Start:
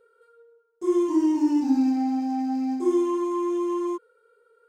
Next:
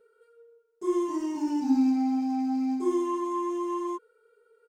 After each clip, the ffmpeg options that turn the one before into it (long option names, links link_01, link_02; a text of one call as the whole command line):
ffmpeg -i in.wav -af "aecho=1:1:4.7:0.59,volume=-3dB" out.wav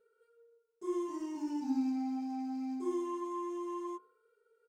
ffmpeg -i in.wav -af "bandreject=frequency=52.87:width_type=h:width=4,bandreject=frequency=105.74:width_type=h:width=4,bandreject=frequency=158.61:width_type=h:width=4,bandreject=frequency=211.48:width_type=h:width=4,bandreject=frequency=264.35:width_type=h:width=4,bandreject=frequency=317.22:width_type=h:width=4,bandreject=frequency=370.09:width_type=h:width=4,bandreject=frequency=422.96:width_type=h:width=4,bandreject=frequency=475.83:width_type=h:width=4,bandreject=frequency=528.7:width_type=h:width=4,bandreject=frequency=581.57:width_type=h:width=4,bandreject=frequency=634.44:width_type=h:width=4,bandreject=frequency=687.31:width_type=h:width=4,bandreject=frequency=740.18:width_type=h:width=4,bandreject=frequency=793.05:width_type=h:width=4,bandreject=frequency=845.92:width_type=h:width=4,bandreject=frequency=898.79:width_type=h:width=4,bandreject=frequency=951.66:width_type=h:width=4,bandreject=frequency=1004.53:width_type=h:width=4,bandreject=frequency=1057.4:width_type=h:width=4,bandreject=frequency=1110.27:width_type=h:width=4,volume=-8.5dB" out.wav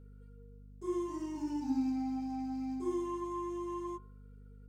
ffmpeg -i in.wav -af "aeval=exprs='val(0)+0.00251*(sin(2*PI*50*n/s)+sin(2*PI*2*50*n/s)/2+sin(2*PI*3*50*n/s)/3+sin(2*PI*4*50*n/s)/4+sin(2*PI*5*50*n/s)/5)':channel_layout=same" out.wav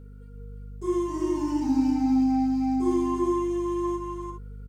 ffmpeg -i in.wav -af "aecho=1:1:341|402:0.562|0.282,volume=9dB" out.wav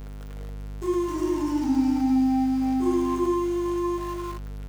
ffmpeg -i in.wav -af "aeval=exprs='val(0)+0.5*0.0168*sgn(val(0))':channel_layout=same" out.wav